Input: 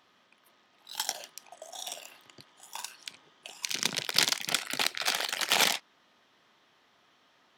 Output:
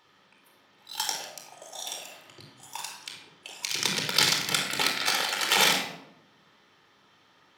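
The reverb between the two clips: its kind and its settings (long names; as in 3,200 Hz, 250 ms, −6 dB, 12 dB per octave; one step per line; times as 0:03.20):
rectangular room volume 2,200 cubic metres, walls furnished, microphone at 4.3 metres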